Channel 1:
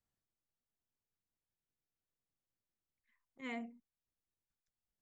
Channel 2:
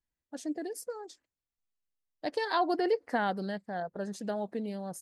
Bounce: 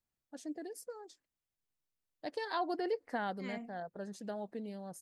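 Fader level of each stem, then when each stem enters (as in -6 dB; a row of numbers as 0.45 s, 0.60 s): -1.5 dB, -7.0 dB; 0.00 s, 0.00 s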